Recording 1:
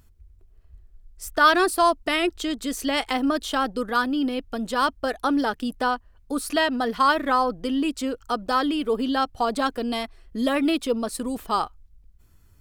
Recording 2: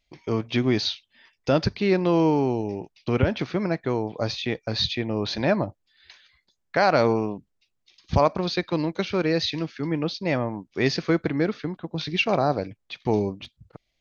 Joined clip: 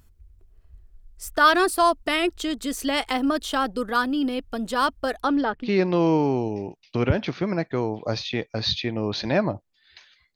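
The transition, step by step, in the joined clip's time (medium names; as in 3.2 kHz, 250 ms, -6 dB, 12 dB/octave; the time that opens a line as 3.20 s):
recording 1
5.21–5.69 s: low-pass 7.4 kHz -> 1.2 kHz
5.65 s: go over to recording 2 from 1.78 s, crossfade 0.08 s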